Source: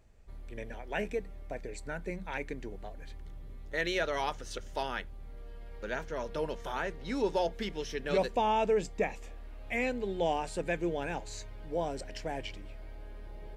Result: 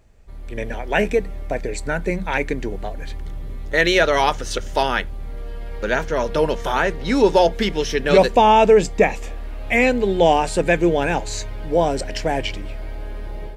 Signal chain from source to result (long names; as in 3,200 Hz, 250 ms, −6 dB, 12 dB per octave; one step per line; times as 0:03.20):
automatic gain control gain up to 8 dB
level +7.5 dB